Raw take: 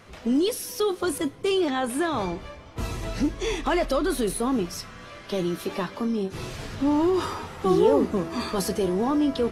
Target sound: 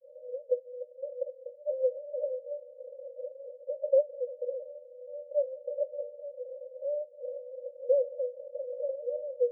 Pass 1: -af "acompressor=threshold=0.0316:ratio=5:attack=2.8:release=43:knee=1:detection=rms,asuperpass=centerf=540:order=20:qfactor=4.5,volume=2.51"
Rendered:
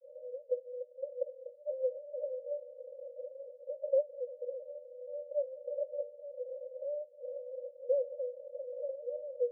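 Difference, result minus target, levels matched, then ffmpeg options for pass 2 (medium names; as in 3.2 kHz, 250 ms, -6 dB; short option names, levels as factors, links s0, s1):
compression: peak gain reduction +5 dB
-af "acompressor=threshold=0.0668:ratio=5:attack=2.8:release=43:knee=1:detection=rms,asuperpass=centerf=540:order=20:qfactor=4.5,volume=2.51"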